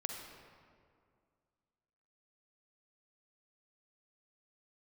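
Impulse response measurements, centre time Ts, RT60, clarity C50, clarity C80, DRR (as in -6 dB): 66 ms, 2.2 s, 2.5 dB, 4.5 dB, 2.0 dB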